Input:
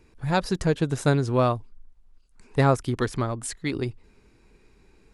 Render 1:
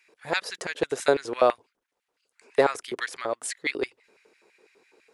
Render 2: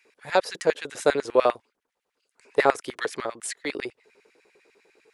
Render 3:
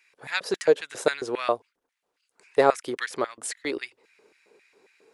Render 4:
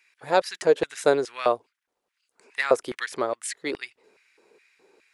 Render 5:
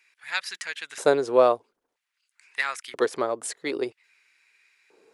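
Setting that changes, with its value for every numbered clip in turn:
LFO high-pass, rate: 6, 10, 3.7, 2.4, 0.51 Hz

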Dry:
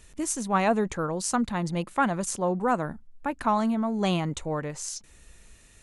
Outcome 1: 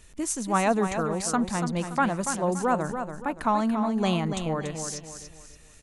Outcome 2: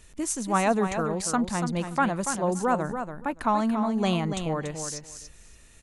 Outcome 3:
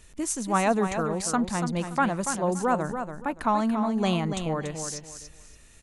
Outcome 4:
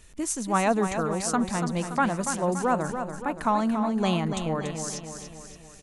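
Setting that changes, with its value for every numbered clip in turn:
feedback echo, feedback: 36, 15, 24, 54%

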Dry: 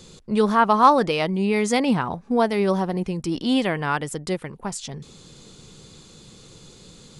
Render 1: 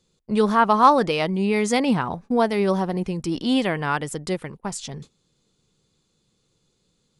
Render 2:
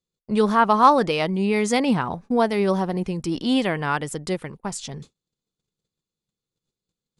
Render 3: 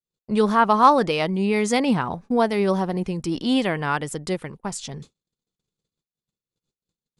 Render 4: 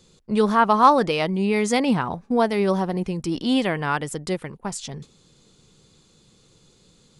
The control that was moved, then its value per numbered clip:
gate, range: -22, -42, -57, -10 dB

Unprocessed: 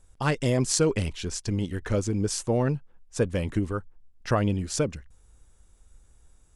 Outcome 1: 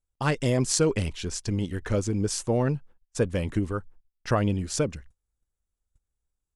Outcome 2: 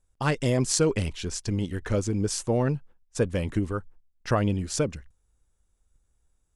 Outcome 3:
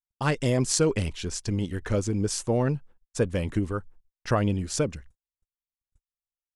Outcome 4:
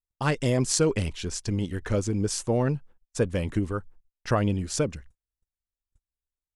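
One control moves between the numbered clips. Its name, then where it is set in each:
gate, range: -26, -13, -53, -38 dB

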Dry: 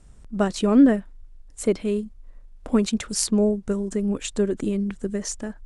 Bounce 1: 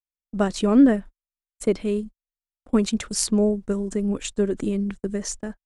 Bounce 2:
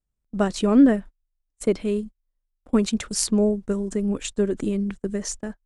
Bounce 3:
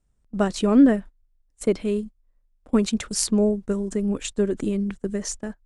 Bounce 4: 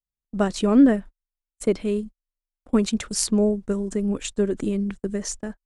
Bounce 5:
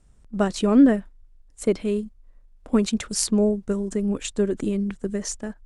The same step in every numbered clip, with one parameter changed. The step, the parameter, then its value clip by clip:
gate, range: -60, -33, -20, -47, -7 dB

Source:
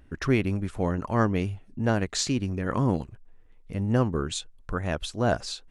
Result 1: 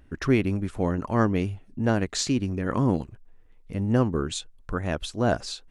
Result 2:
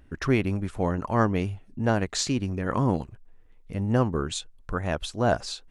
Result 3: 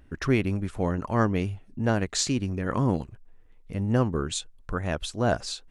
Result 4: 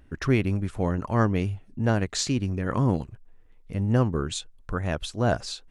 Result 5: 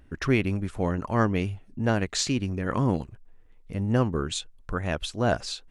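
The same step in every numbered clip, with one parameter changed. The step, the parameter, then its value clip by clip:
dynamic EQ, frequency: 290, 840, 8200, 110, 2600 Hz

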